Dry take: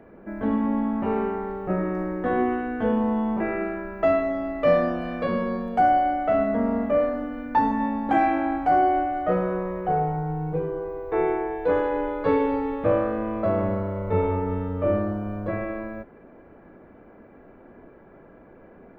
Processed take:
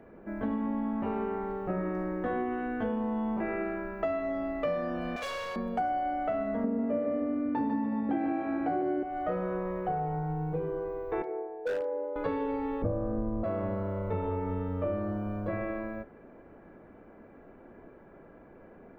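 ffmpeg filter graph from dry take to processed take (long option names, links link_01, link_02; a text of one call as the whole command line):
ffmpeg -i in.wav -filter_complex "[0:a]asettb=1/sr,asplit=3[link_01][link_02][link_03];[link_01]atrim=end=5.164[link_04];[link_02]atrim=start=5.16:end=5.56,asetpts=PTS-STARTPTS,afade=type=in:duration=0.004:curve=qsin,afade=type=out:start_time=0.396:duration=0.004:curve=qsin,highpass=frequency=550:width=0.5412,highpass=frequency=550:width=1.3066,equalizer=frequency=3600:width=0.68:gain=12,asoftclip=type=hard:threshold=-30.5dB[link_05];[link_03]atrim=start=5.556[link_06];[link_04][link_05]acrossfade=duration=0.004:curve1=hsin:curve2=qsin[link_07];[link_07][link_06]acrossfade=duration=0.004:curve1=qsin:curve2=hsin,asettb=1/sr,asplit=3[link_08][link_09][link_10];[link_08]atrim=end=6.644[link_11];[link_09]atrim=start=6.64:end=9.03,asetpts=PTS-STARTPTS,afade=type=in:duration=0.004:curve=qsin,afade=type=out:start_time=2.386:duration=0.004:curve=qsin,highpass=100,lowpass=3700,lowshelf=frequency=600:width_type=q:width=1.5:gain=8,aecho=1:1:147|294|441|588|735:0.668|0.274|0.112|0.0461|0.0189,atrim=end_sample=105399[link_12];[link_10]atrim=start=9.026[link_13];[link_11][link_12]acrossfade=duration=0.004:curve1=hsin:curve2=qsin[link_14];[link_14][link_13]acrossfade=duration=0.004:curve1=qsin:curve2=hsin,asettb=1/sr,asplit=3[link_15][link_16][link_17];[link_15]atrim=end=11.224[link_18];[link_16]atrim=start=11.22:end=12.16,asetpts=PTS-STARTPTS,afade=type=in:duration=0.004:curve=qsin,afade=type=out:start_time=0.936:duration=0.004:curve=qsin,bandpass=frequency=540:width_type=q:width=3.5,aeval=exprs='0.0944*(abs(mod(val(0)/0.0944+3,4)-2)-1)':channel_layout=same[link_19];[link_17]atrim=start=12.156[link_20];[link_18][link_19]acrossfade=duration=0.004:curve1=hsin:curve2=qsin[link_21];[link_21][link_20]acrossfade=duration=0.004:curve1=qsin:curve2=hsin,asettb=1/sr,asplit=3[link_22][link_23][link_24];[link_22]atrim=end=12.824[link_25];[link_23]atrim=start=12.82:end=13.44,asetpts=PTS-STARTPTS,afade=type=in:duration=0.004:curve=qsin,afade=type=out:start_time=0.616:duration=0.004:curve=qsin,lowpass=1100,aemphasis=mode=reproduction:type=riaa[link_26];[link_24]atrim=start=13.436[link_27];[link_25][link_26]acrossfade=duration=0.004:curve1=hsin:curve2=qsin[link_28];[link_28][link_27]acrossfade=duration=0.004:curve1=qsin:curve2=hsin,bandreject=frequency=63.28:width_type=h:width=4,bandreject=frequency=126.56:width_type=h:width=4,bandreject=frequency=189.84:width_type=h:width=4,bandreject=frequency=253.12:width_type=h:width=4,bandreject=frequency=316.4:width_type=h:width=4,bandreject=frequency=379.68:width_type=h:width=4,bandreject=frequency=442.96:width_type=h:width=4,bandreject=frequency=506.24:width_type=h:width=4,bandreject=frequency=569.52:width_type=h:width=4,bandreject=frequency=632.8:width_type=h:width=4,bandreject=frequency=696.08:width_type=h:width=4,bandreject=frequency=759.36:width_type=h:width=4,bandreject=frequency=822.64:width_type=h:width=4,bandreject=frequency=885.92:width_type=h:width=4,bandreject=frequency=949.2:width_type=h:width=4,bandreject=frequency=1012.48:width_type=h:width=4,bandreject=frequency=1075.76:width_type=h:width=4,bandreject=frequency=1139.04:width_type=h:width=4,bandreject=frequency=1202.32:width_type=h:width=4,bandreject=frequency=1265.6:width_type=h:width=4,bandreject=frequency=1328.88:width_type=h:width=4,bandreject=frequency=1392.16:width_type=h:width=4,bandreject=frequency=1455.44:width_type=h:width=4,bandreject=frequency=1518.72:width_type=h:width=4,bandreject=frequency=1582:width_type=h:width=4,bandreject=frequency=1645.28:width_type=h:width=4,bandreject=frequency=1708.56:width_type=h:width=4,bandreject=frequency=1771.84:width_type=h:width=4,bandreject=frequency=1835.12:width_type=h:width=4,bandreject=frequency=1898.4:width_type=h:width=4,bandreject=frequency=1961.68:width_type=h:width=4,bandreject=frequency=2024.96:width_type=h:width=4,bandreject=frequency=2088.24:width_type=h:width=4,bandreject=frequency=2151.52:width_type=h:width=4,bandreject=frequency=2214.8:width_type=h:width=4,bandreject=frequency=2278.08:width_type=h:width=4,bandreject=frequency=2341.36:width_type=h:width=4,bandreject=frequency=2404.64:width_type=h:width=4,acompressor=threshold=-25dB:ratio=6,volume=-3dB" out.wav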